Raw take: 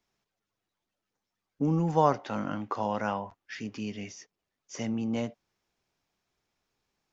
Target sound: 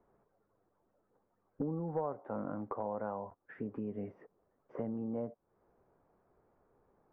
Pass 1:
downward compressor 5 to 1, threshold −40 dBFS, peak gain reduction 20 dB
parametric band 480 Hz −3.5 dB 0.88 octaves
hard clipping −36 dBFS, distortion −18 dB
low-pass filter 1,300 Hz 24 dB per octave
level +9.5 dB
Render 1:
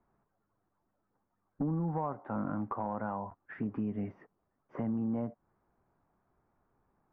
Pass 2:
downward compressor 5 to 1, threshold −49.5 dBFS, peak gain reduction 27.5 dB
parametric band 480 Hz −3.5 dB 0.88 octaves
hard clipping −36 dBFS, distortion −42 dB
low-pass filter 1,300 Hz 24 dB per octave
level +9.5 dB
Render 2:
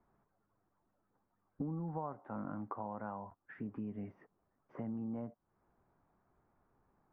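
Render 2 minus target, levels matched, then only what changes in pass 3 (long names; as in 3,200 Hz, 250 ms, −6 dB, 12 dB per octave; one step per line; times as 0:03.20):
500 Hz band −5.5 dB
change: parametric band 480 Hz +7.5 dB 0.88 octaves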